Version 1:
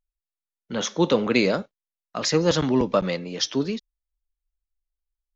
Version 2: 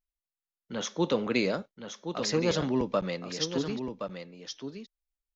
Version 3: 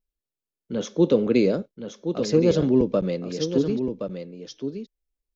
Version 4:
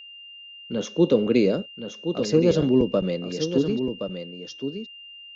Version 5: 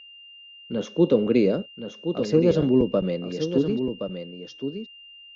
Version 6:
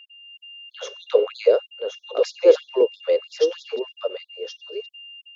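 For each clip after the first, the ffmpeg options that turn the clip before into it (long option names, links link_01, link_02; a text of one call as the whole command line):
ffmpeg -i in.wav -af "aecho=1:1:1071:0.398,volume=-7dB" out.wav
ffmpeg -i in.wav -af "lowshelf=frequency=630:width_type=q:width=1.5:gain=9.5,bandreject=frequency=1900:width=14,volume=-2dB" out.wav
ffmpeg -i in.wav -af "aeval=exprs='val(0)+0.00891*sin(2*PI*2800*n/s)':channel_layout=same" out.wav
ffmpeg -i in.wav -af "lowpass=frequency=2700:poles=1" out.wav
ffmpeg -i in.wav -af "dynaudnorm=framelen=200:gausssize=3:maxgain=5.5dB,lowshelf=frequency=360:width_type=q:width=3:gain=-8.5,afftfilt=real='re*gte(b*sr/1024,250*pow(3400/250,0.5+0.5*sin(2*PI*3.1*pts/sr)))':imag='im*gte(b*sr/1024,250*pow(3400/250,0.5+0.5*sin(2*PI*3.1*pts/sr)))':win_size=1024:overlap=0.75" out.wav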